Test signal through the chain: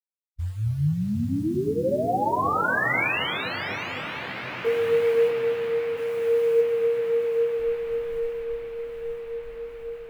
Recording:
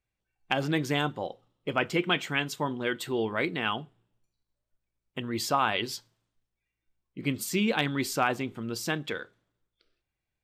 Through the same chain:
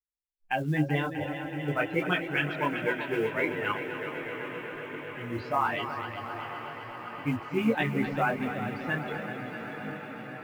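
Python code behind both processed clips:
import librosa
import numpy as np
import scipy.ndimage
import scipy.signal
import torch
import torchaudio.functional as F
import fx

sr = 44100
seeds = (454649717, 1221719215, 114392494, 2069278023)

p1 = fx.bin_expand(x, sr, power=2.0)
p2 = scipy.signal.sosfilt(scipy.signal.butter(4, 2500.0, 'lowpass', fs=sr, output='sos'), p1)
p3 = fx.over_compress(p2, sr, threshold_db=-32.0, ratio=-0.5)
p4 = p2 + (p3 * 10.0 ** (-2.5 / 20.0))
p5 = fx.echo_diffused(p4, sr, ms=826, feedback_pct=71, wet_db=-11.5)
p6 = fx.quant_float(p5, sr, bits=4)
p7 = p6 + fx.echo_heads(p6, sr, ms=127, heads='second and third', feedback_pct=73, wet_db=-10.5, dry=0)
p8 = fx.detune_double(p7, sr, cents=14)
y = p8 * 10.0 ** (4.0 / 20.0)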